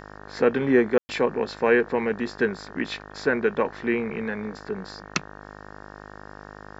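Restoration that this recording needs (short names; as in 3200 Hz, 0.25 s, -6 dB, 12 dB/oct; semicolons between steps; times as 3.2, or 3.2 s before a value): de-hum 51 Hz, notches 36; room tone fill 0.98–1.09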